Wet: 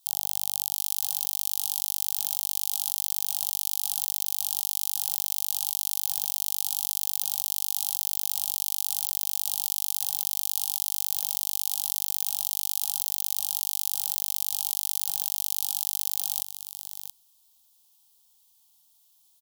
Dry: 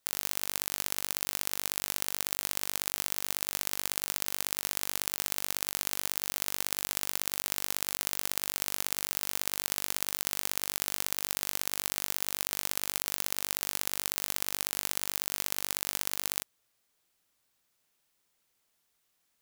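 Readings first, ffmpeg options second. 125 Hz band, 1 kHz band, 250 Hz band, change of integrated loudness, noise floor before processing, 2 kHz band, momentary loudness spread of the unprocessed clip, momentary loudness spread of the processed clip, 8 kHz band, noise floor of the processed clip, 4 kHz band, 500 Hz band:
can't be measured, −5.5 dB, below −10 dB, +5.5 dB, −76 dBFS, −14.0 dB, 0 LU, 0 LU, +4.0 dB, −63 dBFS, +1.5 dB, below −20 dB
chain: -filter_complex "[0:a]alimiter=limit=-11.5dB:level=0:latency=1:release=115,firequalizer=gain_entry='entry(110,0);entry(550,-28);entry(810,7);entry(1700,-21);entry(3200,8);entry(8000,9);entry(12000,13)':delay=0.05:min_phase=1,asplit=2[link_01][link_02];[link_02]aecho=0:1:676:0.316[link_03];[link_01][link_03]amix=inputs=2:normalize=0,volume=1.5dB"

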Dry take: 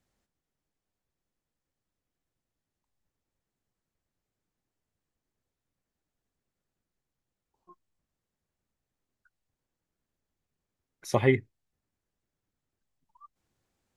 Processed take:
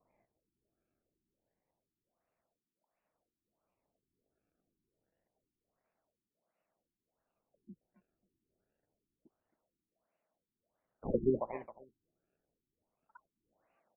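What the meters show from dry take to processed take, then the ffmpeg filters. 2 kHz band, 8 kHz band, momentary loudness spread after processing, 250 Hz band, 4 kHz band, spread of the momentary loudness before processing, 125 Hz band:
−24.0 dB, below −25 dB, 15 LU, −5.5 dB, below −30 dB, 6 LU, −13.5 dB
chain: -filter_complex "[0:a]highpass=frequency=230:width=0.5412,highpass=frequency=230:width=1.3066,equalizer=frequency=260:width_type=q:width=4:gain=-10,equalizer=frequency=380:width_type=q:width=4:gain=-10,equalizer=frequency=650:width_type=q:width=4:gain=10,equalizer=frequency=1700:width_type=q:width=4:gain=-7,equalizer=frequency=4700:width_type=q:width=4:gain=5,lowpass=frequency=7600:width=0.5412,lowpass=frequency=7600:width=1.3066,acrusher=samples=25:mix=1:aa=0.000001:lfo=1:lforange=40:lforate=0.27,asplit=2[link_01][link_02];[link_02]adelay=269,lowpass=frequency=2400:poles=1,volume=-18dB,asplit=2[link_03][link_04];[link_04]adelay=269,lowpass=frequency=2400:poles=1,volume=0.2[link_05];[link_03][link_05]amix=inputs=2:normalize=0[link_06];[link_01][link_06]amix=inputs=2:normalize=0,afftfilt=real='re*lt(b*sr/1024,380*pow(3000/380,0.5+0.5*sin(2*PI*1.4*pts/sr)))':imag='im*lt(b*sr/1024,380*pow(3000/380,0.5+0.5*sin(2*PI*1.4*pts/sr)))':win_size=1024:overlap=0.75,volume=5dB"

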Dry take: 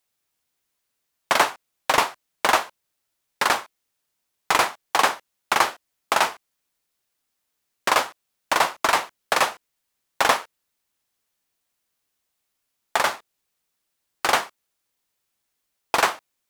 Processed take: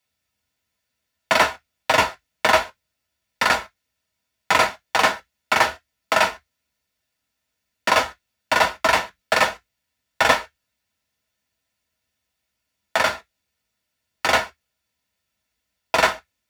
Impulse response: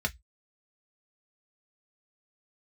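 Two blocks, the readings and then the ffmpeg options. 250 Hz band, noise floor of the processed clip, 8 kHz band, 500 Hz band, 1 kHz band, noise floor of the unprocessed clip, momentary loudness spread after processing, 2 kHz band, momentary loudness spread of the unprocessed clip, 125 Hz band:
+3.0 dB, −79 dBFS, −1.0 dB, +4.0 dB, +1.0 dB, −78 dBFS, 7 LU, +3.5 dB, 7 LU, +7.5 dB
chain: -filter_complex "[1:a]atrim=start_sample=2205,afade=type=out:start_time=0.15:duration=0.01,atrim=end_sample=7056[link_01];[0:a][link_01]afir=irnorm=-1:irlink=0,volume=-3.5dB"

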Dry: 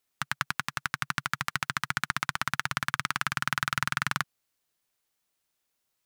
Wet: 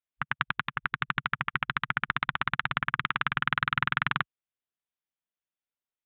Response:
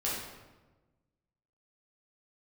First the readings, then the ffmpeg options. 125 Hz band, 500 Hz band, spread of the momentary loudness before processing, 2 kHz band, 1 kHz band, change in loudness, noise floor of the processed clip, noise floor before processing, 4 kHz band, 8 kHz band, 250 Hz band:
+1.5 dB, 0.0 dB, 4 LU, +1.5 dB, +1.5 dB, +1.0 dB, below −85 dBFS, −80 dBFS, −1.5 dB, below −40 dB, +1.5 dB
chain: -af "afwtdn=0.01,aresample=8000,aresample=44100,volume=1.5dB"

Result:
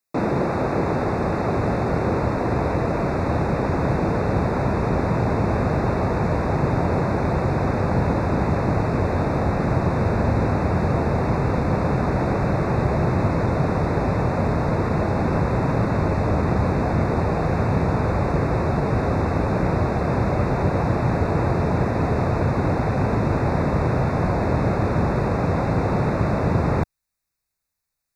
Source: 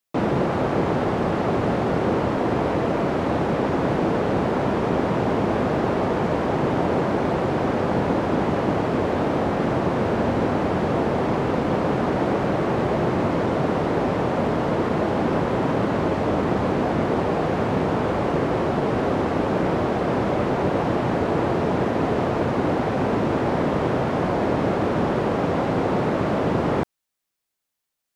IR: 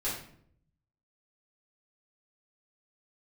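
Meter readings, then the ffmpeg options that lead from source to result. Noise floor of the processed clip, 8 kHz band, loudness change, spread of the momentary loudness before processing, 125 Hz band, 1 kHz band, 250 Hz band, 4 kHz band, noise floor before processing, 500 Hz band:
−81 dBFS, can't be measured, +0.5 dB, 1 LU, +6.0 dB, −0.5 dB, −0.5 dB, −5.0 dB, −82 dBFS, −1.5 dB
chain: -af "asubboost=boost=4:cutoff=130,asuperstop=centerf=3100:order=12:qfactor=3.5"

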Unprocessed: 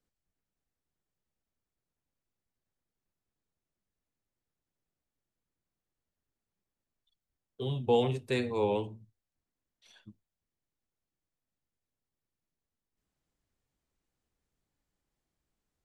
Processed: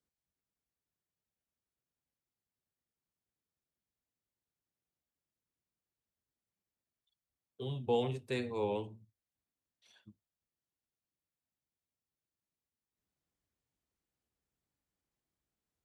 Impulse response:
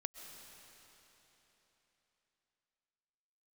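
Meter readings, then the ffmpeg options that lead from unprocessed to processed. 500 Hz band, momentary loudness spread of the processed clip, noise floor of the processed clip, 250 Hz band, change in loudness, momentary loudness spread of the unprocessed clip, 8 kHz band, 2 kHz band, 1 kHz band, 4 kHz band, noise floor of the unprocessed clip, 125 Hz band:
−5.5 dB, 10 LU, below −85 dBFS, −5.5 dB, −5.5 dB, 10 LU, can't be measured, −5.5 dB, −5.5 dB, −5.5 dB, below −85 dBFS, −5.5 dB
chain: -af "highpass=51,volume=-5.5dB"

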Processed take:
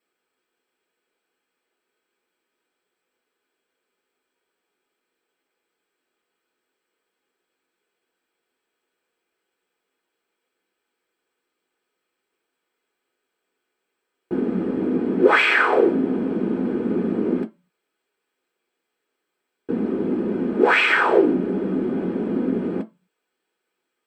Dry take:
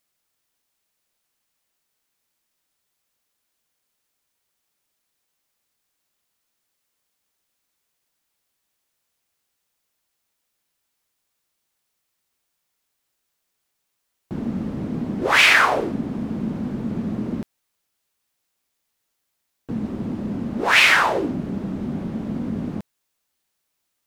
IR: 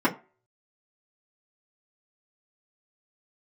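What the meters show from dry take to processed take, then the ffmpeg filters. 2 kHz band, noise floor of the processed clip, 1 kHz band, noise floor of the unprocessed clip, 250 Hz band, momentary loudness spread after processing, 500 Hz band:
−2.5 dB, −80 dBFS, −1.0 dB, −77 dBFS, +4.0 dB, 11 LU, +8.5 dB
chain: -filter_complex "[0:a]acompressor=threshold=-18dB:ratio=5[link_01];[1:a]atrim=start_sample=2205,asetrate=66150,aresample=44100[link_02];[link_01][link_02]afir=irnorm=-1:irlink=0,volume=-9dB"

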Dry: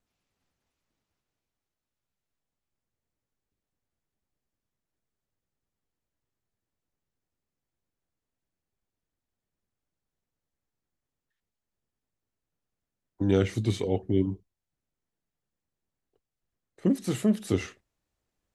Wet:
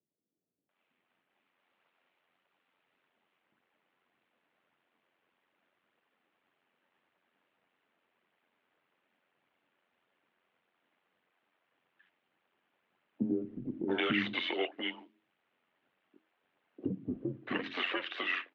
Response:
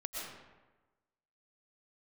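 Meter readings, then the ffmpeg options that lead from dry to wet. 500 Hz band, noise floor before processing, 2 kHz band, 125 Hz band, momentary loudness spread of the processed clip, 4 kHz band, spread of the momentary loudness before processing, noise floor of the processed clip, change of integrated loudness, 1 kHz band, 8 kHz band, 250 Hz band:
−7.5 dB, below −85 dBFS, +9.5 dB, −16.0 dB, 9 LU, +6.5 dB, 7 LU, −82 dBFS, −7.5 dB, +3.0 dB, below −25 dB, −8.0 dB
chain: -filter_complex "[0:a]lowshelf=frequency=440:gain=-7.5,bandreject=frequency=50:width_type=h:width=6,bandreject=frequency=100:width_type=h:width=6,bandreject=frequency=150:width_type=h:width=6,bandreject=frequency=200:width_type=h:width=6,bandreject=frequency=250:width_type=h:width=6,bandreject=frequency=300:width_type=h:width=6,bandreject=frequency=350:width_type=h:width=6,bandreject=frequency=400:width_type=h:width=6,acrossover=split=1600[link_01][link_02];[link_01]acompressor=threshold=-44dB:ratio=6[link_03];[link_02]alimiter=level_in=14.5dB:limit=-24dB:level=0:latency=1:release=58,volume=-14.5dB[link_04];[link_03][link_04]amix=inputs=2:normalize=0,dynaudnorm=framelen=340:gausssize=7:maxgain=12dB,aphaser=in_gain=1:out_gain=1:delay=3.3:decay=0.31:speed=1.7:type=triangular,asplit=2[link_05][link_06];[link_06]asoftclip=type=tanh:threshold=-32.5dB,volume=-4dB[link_07];[link_05][link_07]amix=inputs=2:normalize=0,tremolo=f=89:d=0.519,acrossover=split=470[link_08][link_09];[link_09]adelay=690[link_10];[link_08][link_10]amix=inputs=2:normalize=0,highpass=frequency=300:width_type=q:width=0.5412,highpass=frequency=300:width_type=q:width=1.307,lowpass=frequency=3200:width_type=q:width=0.5176,lowpass=frequency=3200:width_type=q:width=0.7071,lowpass=frequency=3200:width_type=q:width=1.932,afreqshift=-82,volume=5dB"

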